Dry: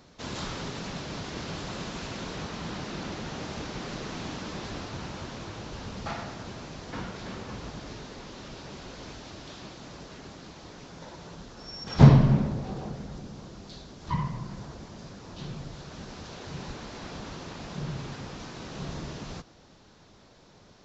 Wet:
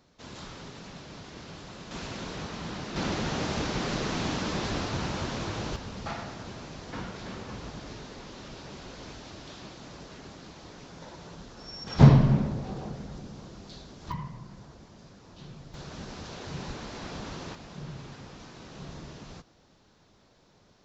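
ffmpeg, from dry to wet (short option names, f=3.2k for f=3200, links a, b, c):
-af "asetnsamples=n=441:p=0,asendcmd='1.91 volume volume -1dB;2.96 volume volume 6dB;5.76 volume volume -1dB;14.12 volume volume -7.5dB;15.74 volume volume 1dB;17.55 volume volume -6dB',volume=-8dB"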